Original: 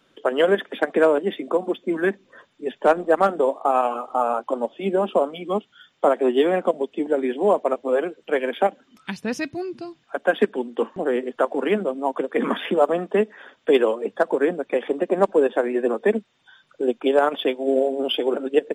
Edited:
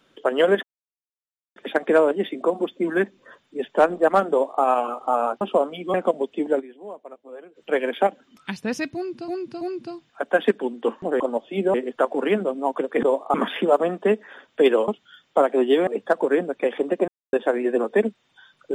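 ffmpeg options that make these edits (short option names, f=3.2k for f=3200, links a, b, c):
-filter_complex "[0:a]asplit=16[a][b][c][d][e][f][g][h][i][j][k][l][m][n][o][p];[a]atrim=end=0.63,asetpts=PTS-STARTPTS,afade=t=out:st=0.626:d=0.004:c=hsin,apad=pad_dur=0.93[q];[b]atrim=start=0.63:end=4.482,asetpts=PTS-STARTPTS,afade=t=in:d=0.004:c=hsin[r];[c]atrim=start=5.018:end=5.552[s];[d]atrim=start=6.538:end=7.35,asetpts=PTS-STARTPTS,afade=t=out:st=0.652:d=0.16:c=exp:silence=0.112202[t];[e]atrim=start=7.35:end=8.01,asetpts=PTS-STARTPTS,volume=-19dB[u];[f]atrim=start=8.01:end=9.882,asetpts=PTS-STARTPTS,afade=t=in:d=0.16:c=exp:silence=0.112202[v];[g]atrim=start=9.548:end=9.882[w];[h]atrim=start=9.548:end=11.142[x];[i]atrim=start=4.478:end=5.022[y];[j]atrim=start=11.138:end=12.432[z];[k]atrim=start=3.378:end=3.692[aa];[l]atrim=start=12.428:end=13.972[ab];[m]atrim=start=5.548:end=6.542[ac];[n]atrim=start=13.968:end=15.18,asetpts=PTS-STARTPTS,afade=t=out:st=1.208:d=0.004:c=hsin[ad];[o]atrim=start=15.18:end=15.43,asetpts=PTS-STARTPTS,volume=0[ae];[p]atrim=start=15.43,asetpts=PTS-STARTPTS,afade=t=in:d=0.004:c=hsin[af];[q][r]concat=n=2:v=0:a=1[ag];[ag][s]acrossfade=d=0.004:c1=hsin:c2=hsin[ah];[t][u][v]concat=n=3:v=0:a=1[ai];[ah][ai]acrossfade=d=0.004:c1=hsin:c2=hsin[aj];[aj][w]acrossfade=d=0.004:c1=hsin:c2=hsin[ak];[ak][x]acrossfade=d=0.004:c1=hsin:c2=hsin[al];[al][y]acrossfade=d=0.004:c1=hsin:c2=hsin[am];[am][z]acrossfade=d=0.004:c1=hsin:c2=hsin[an];[an][aa]acrossfade=d=0.004:c1=hsin:c2=hsin[ao];[ao][ab]acrossfade=d=0.004:c1=hsin:c2=hsin[ap];[ap][ac]acrossfade=d=0.004:c1=hsin:c2=hsin[aq];[ad][ae][af]concat=n=3:v=0:a=1[ar];[aq][ar]acrossfade=d=0.004:c1=hsin:c2=hsin"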